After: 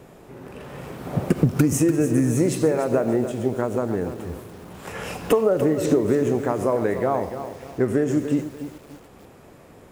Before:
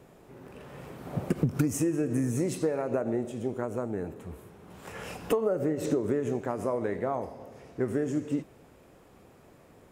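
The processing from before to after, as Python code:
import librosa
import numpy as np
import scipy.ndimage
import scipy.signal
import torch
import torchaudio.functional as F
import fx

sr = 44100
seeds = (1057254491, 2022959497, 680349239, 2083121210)

y = fx.echo_crushed(x, sr, ms=292, feedback_pct=35, bits=8, wet_db=-11.0)
y = F.gain(torch.from_numpy(y), 8.0).numpy()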